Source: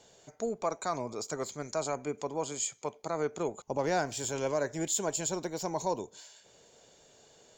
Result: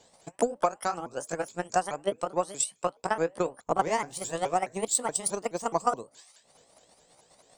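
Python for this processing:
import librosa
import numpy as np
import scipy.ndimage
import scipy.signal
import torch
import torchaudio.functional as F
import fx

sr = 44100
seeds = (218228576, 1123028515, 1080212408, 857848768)

y = fx.pitch_ramps(x, sr, semitones=6.0, every_ms=212)
y = fx.transient(y, sr, attack_db=11, sustain_db=-4)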